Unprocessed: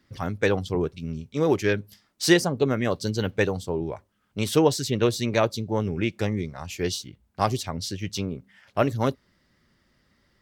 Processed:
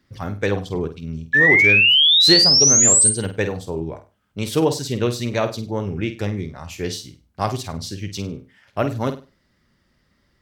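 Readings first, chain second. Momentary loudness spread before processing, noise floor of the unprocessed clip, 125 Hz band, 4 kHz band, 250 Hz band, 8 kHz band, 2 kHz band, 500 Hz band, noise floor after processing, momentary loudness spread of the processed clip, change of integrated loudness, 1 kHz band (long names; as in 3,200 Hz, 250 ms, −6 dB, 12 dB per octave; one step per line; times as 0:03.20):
12 LU, −68 dBFS, +2.5 dB, +17.0 dB, +1.0 dB, +19.0 dB, +13.5 dB, +0.5 dB, −65 dBFS, 20 LU, +10.5 dB, +0.5 dB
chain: low-shelf EQ 140 Hz +3 dB
sound drawn into the spectrogram rise, 0:01.33–0:03.10, 1,700–8,900 Hz −14 dBFS
on a send: flutter between parallel walls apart 8.5 metres, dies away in 0.31 s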